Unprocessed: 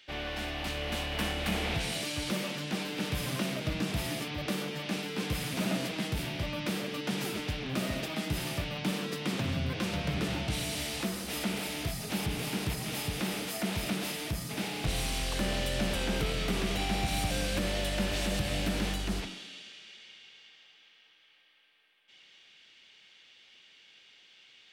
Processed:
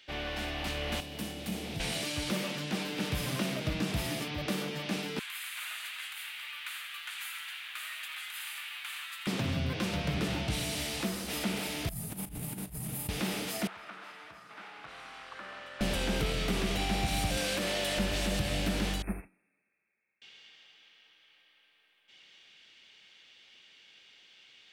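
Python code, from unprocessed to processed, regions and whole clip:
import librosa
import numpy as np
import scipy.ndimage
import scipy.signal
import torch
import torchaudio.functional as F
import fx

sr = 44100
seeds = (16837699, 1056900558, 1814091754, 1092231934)

y = fx.chain(x, sr, fx.highpass(hz=130.0, slope=12),
    fx.peak_eq(hz=1400.0, db=-13.0, octaves=3.0), at=(1.0, 1.8))
y = fx.chain(y, sr, fx.cheby2_highpass(hz=500.0, order=4, stop_db=50),
    fx.peak_eq(hz=5400.0, db=-14.0, octaves=0.55),
    fx.echo_crushed(ms=83, feedback_pct=80, bits=10, wet_db=-10), at=(5.19, 9.27))
y = fx.chain(y, sr, fx.curve_eq(hz=(150.0, 390.0, 900.0, 2700.0, 5500.0, 10000.0), db=(0, -11, -10, -15, -16, 2)),
    fx.over_compress(threshold_db=-39.0, ratio=-0.5),
    fx.doubler(ms=37.0, db=-12.0), at=(11.89, 13.09))
y = fx.chain(y, sr, fx.bandpass_q(hz=1300.0, q=2.7),
    fx.echo_single(ms=472, db=-12.5), at=(13.67, 15.81))
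y = fx.chain(y, sr, fx.highpass(hz=330.0, slope=6),
    fx.env_flatten(amount_pct=100), at=(17.37, 17.98))
y = fx.chain(y, sr, fx.brickwall_bandstop(low_hz=2700.0, high_hz=8600.0),
    fx.upward_expand(threshold_db=-45.0, expansion=2.5), at=(19.02, 20.22))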